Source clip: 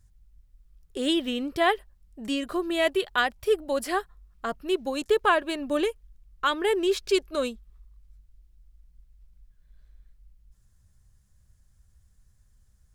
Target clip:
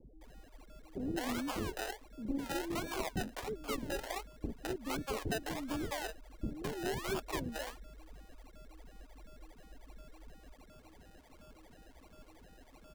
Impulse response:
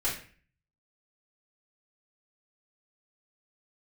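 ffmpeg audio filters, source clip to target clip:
-filter_complex "[0:a]equalizer=f=125:t=o:w=1:g=-12,equalizer=f=500:t=o:w=1:g=-3,equalizer=f=1000:t=o:w=1:g=4,equalizer=f=2000:t=o:w=1:g=5,equalizer=f=4000:t=o:w=1:g=7,equalizer=f=8000:t=o:w=1:g=11,acrossover=split=250[s0][s1];[s1]acompressor=threshold=0.0158:ratio=6[s2];[s0][s2]amix=inputs=2:normalize=0,aeval=exprs='val(0)+0.00158*sin(2*PI*7400*n/s)':c=same,acrusher=samples=31:mix=1:aa=0.000001:lfo=1:lforange=18.6:lforate=1.4,acrossover=split=460[s3][s4];[s4]adelay=210[s5];[s3][s5]amix=inputs=2:normalize=0"

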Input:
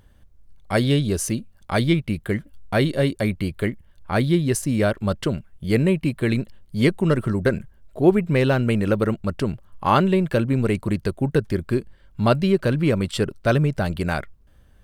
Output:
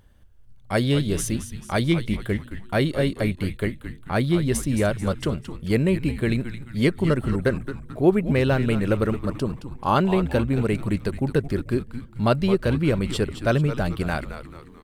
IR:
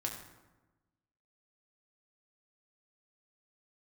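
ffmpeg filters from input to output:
-filter_complex "[0:a]asettb=1/sr,asplit=3[s0][s1][s2];[s0]atrim=end=9.214[s3];[s1]atrim=start=9.21:end=9.97,asetpts=PTS-STARTPTS,afade=t=in:d=0.004:c=qsin,afade=t=out:st=0.756:d=0.004:c=qsin,equalizer=f=2000:t=o:w=0.56:g=-12.5[s4];[s2]atrim=start=9.966[s5];[s3][s4]acrossfade=d=0.004:c1=hsin:c2=qsin[s6];[s6][s5]acrossfade=d=0.004:c1=qsin:c2=hsin,asplit=6[s7][s8][s9][s10][s11][s12];[s8]adelay=219,afreqshift=-120,volume=0.299[s13];[s9]adelay=438,afreqshift=-240,volume=0.138[s14];[s10]adelay=657,afreqshift=-360,volume=0.0631[s15];[s11]adelay=876,afreqshift=-480,volume=0.0292[s16];[s12]adelay=1095,afreqshift=-600,volume=0.0133[s17];[s7][s13][s14][s15][s16][s17]amix=inputs=6:normalize=0,volume=0.794"

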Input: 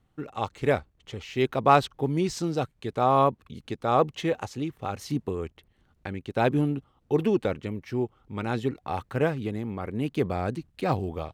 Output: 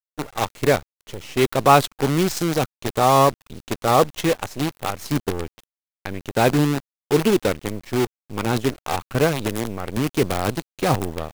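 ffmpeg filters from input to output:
-filter_complex "[0:a]highshelf=f=7500:g=9,asplit=2[s0][s1];[s1]acontrast=83,volume=0.891[s2];[s0][s2]amix=inputs=2:normalize=0,acrusher=bits=4:dc=4:mix=0:aa=0.000001,volume=0.668"

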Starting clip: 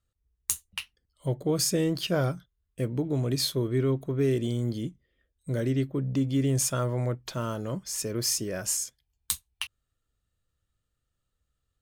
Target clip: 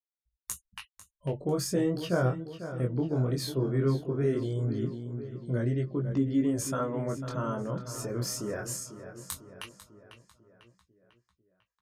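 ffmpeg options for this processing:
-filter_complex "[0:a]afftfilt=real='re*gte(hypot(re,im),0.00355)':imag='im*gte(hypot(re,im),0.00355)':win_size=1024:overlap=0.75,highshelf=f=2000:t=q:w=1.5:g=-6.5,asplit=2[s0][s1];[s1]adelay=497,lowpass=f=4800:p=1,volume=0.282,asplit=2[s2][s3];[s3]adelay=497,lowpass=f=4800:p=1,volume=0.54,asplit=2[s4][s5];[s5]adelay=497,lowpass=f=4800:p=1,volume=0.54,asplit=2[s6][s7];[s7]adelay=497,lowpass=f=4800:p=1,volume=0.54,asplit=2[s8][s9];[s9]adelay=497,lowpass=f=4800:p=1,volume=0.54,asplit=2[s10][s11];[s11]adelay=497,lowpass=f=4800:p=1,volume=0.54[s12];[s0][s2][s4][s6][s8][s10][s12]amix=inputs=7:normalize=0,flanger=delay=16.5:depth=7.8:speed=0.18,aresample=32000,aresample=44100,volume=1.19"

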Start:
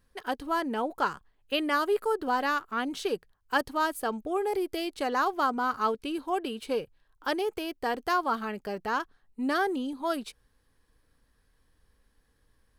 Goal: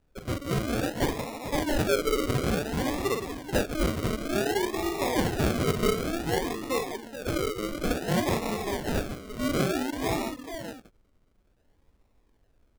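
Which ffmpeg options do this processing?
-af "aecho=1:1:47|166|169|435|506|582:0.562|0.15|0.299|0.299|0.266|0.266,acrusher=samples=40:mix=1:aa=0.000001:lfo=1:lforange=24:lforate=0.56"

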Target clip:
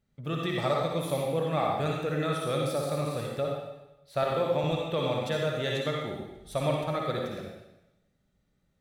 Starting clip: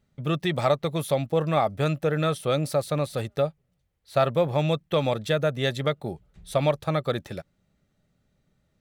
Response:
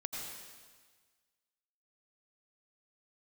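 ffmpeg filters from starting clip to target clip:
-filter_complex "[0:a]asettb=1/sr,asplit=3[s0][s1][s2];[s0]atrim=end=4.234[s3];[s1]atrim=start=4.23:end=4.64,asetpts=PTS-STARTPTS,afade=t=in:d=0.004:c=qsin,afade=t=out:st=0.406:d=0.004:c=qsin,highpass=170[s4];[s2]atrim=start=4.636[s5];[s3][s4]acrossfade=d=0.004:c1=hsin:c2=qsin[s6];[s6][s5]acrossfade=d=0.004:c1=qsin:c2=hsin[s7];[1:a]atrim=start_sample=2205,asetrate=70560,aresample=44100[s8];[s7][s8]afir=irnorm=-1:irlink=0"

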